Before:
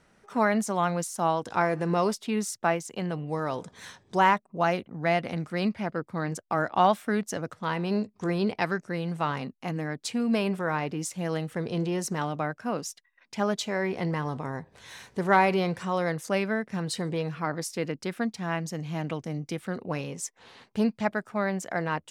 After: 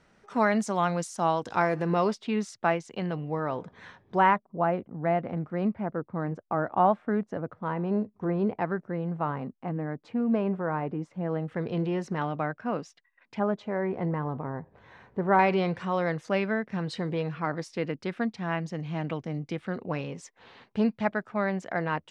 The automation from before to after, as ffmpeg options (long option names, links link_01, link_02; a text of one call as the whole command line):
ffmpeg -i in.wav -af "asetnsamples=nb_out_samples=441:pad=0,asendcmd='1.82 lowpass f 4000;3.28 lowpass f 2200;4.36 lowpass f 1200;11.48 lowpass f 2600;13.39 lowpass f 1300;15.39 lowpass f 3500',lowpass=6700" out.wav